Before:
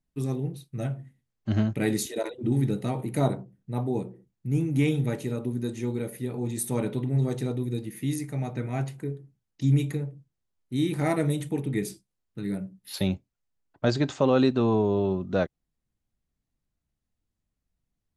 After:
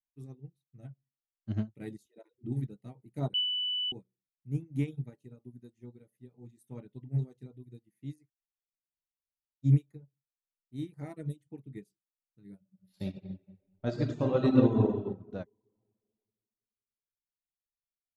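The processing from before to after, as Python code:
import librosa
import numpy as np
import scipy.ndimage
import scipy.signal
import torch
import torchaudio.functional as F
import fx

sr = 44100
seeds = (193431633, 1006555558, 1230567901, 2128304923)

y = fx.reverb_throw(x, sr, start_s=12.59, length_s=2.31, rt60_s=2.1, drr_db=-2.0)
y = fx.edit(y, sr, fx.bleep(start_s=3.34, length_s=0.58, hz=2980.0, db=-11.5),
    fx.room_tone_fill(start_s=8.28, length_s=1.36, crossfade_s=0.04), tone=tone)
y = fx.dereverb_blind(y, sr, rt60_s=0.55)
y = fx.low_shelf(y, sr, hz=380.0, db=9.0)
y = fx.upward_expand(y, sr, threshold_db=-30.0, expansion=2.5)
y = y * 10.0 ** (-6.5 / 20.0)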